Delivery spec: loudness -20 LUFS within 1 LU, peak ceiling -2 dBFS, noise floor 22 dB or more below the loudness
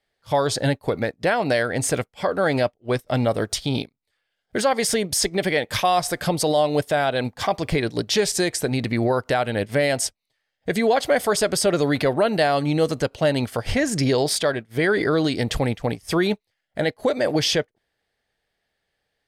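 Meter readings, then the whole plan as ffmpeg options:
loudness -22.0 LUFS; peak level -9.0 dBFS; loudness target -20.0 LUFS
-> -af "volume=1.26"

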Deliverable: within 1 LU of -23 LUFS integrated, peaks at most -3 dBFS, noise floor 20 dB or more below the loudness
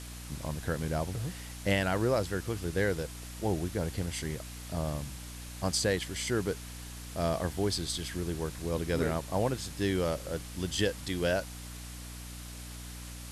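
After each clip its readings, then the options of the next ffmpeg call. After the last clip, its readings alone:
hum 60 Hz; highest harmonic 300 Hz; hum level -42 dBFS; noise floor -44 dBFS; noise floor target -53 dBFS; loudness -33.0 LUFS; peak level -15.5 dBFS; loudness target -23.0 LUFS
-> -af "bandreject=f=60:t=h:w=4,bandreject=f=120:t=h:w=4,bandreject=f=180:t=h:w=4,bandreject=f=240:t=h:w=4,bandreject=f=300:t=h:w=4"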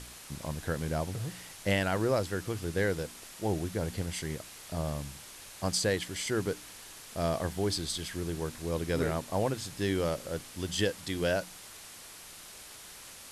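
hum not found; noise floor -49 dBFS; noise floor target -53 dBFS
-> -af "afftdn=nr=6:nf=-49"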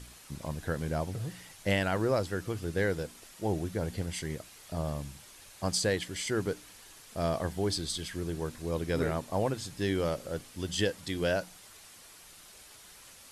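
noise floor -53 dBFS; loudness -33.0 LUFS; peak level -15.5 dBFS; loudness target -23.0 LUFS
-> -af "volume=3.16"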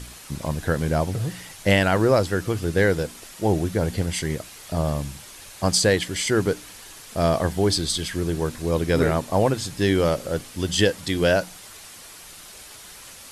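loudness -23.0 LUFS; peak level -5.5 dBFS; noise floor -43 dBFS

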